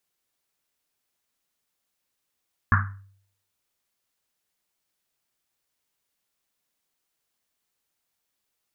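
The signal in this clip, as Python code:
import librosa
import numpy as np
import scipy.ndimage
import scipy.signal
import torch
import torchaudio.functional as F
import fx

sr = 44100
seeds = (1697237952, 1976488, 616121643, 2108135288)

y = fx.risset_drum(sr, seeds[0], length_s=1.1, hz=98.0, decay_s=0.62, noise_hz=1400.0, noise_width_hz=700.0, noise_pct=45)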